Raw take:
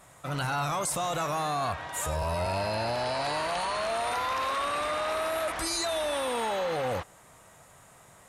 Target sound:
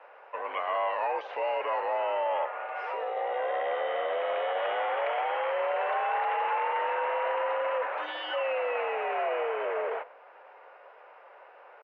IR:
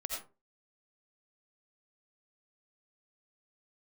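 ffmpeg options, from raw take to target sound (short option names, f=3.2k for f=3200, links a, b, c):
-filter_complex "[0:a]asplit=2[a][b];[b]acompressor=threshold=-41dB:ratio=6,volume=-1dB[c];[a][c]amix=inputs=2:normalize=0,asetrate=30870,aresample=44100,asplit=4[d][e][f][g];[e]adelay=99,afreqshift=40,volume=-19.5dB[h];[f]adelay=198,afreqshift=80,volume=-29.7dB[i];[g]adelay=297,afreqshift=120,volume=-39.8dB[j];[d][h][i][j]amix=inputs=4:normalize=0,asetrate=45392,aresample=44100,atempo=0.971532,highpass=f=400:t=q:w=0.5412,highpass=f=400:t=q:w=1.307,lowpass=f=2.6k:t=q:w=0.5176,lowpass=f=2.6k:t=q:w=0.7071,lowpass=f=2.6k:t=q:w=1.932,afreqshift=67"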